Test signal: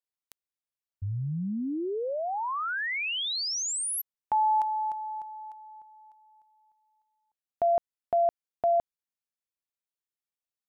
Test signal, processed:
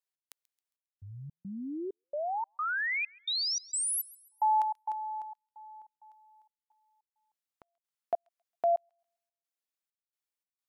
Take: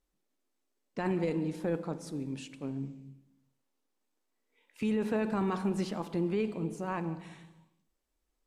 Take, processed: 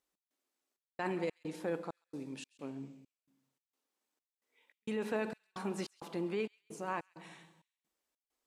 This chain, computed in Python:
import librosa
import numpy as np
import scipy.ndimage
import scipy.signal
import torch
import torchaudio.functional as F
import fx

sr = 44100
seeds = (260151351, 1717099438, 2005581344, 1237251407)

y = fx.highpass(x, sr, hz=500.0, slope=6)
y = fx.step_gate(y, sr, bpm=197, pattern='xx..xxxxxx...xx', floor_db=-60.0, edge_ms=4.5)
y = fx.echo_wet_highpass(y, sr, ms=135, feedback_pct=38, hz=2600.0, wet_db=-21.0)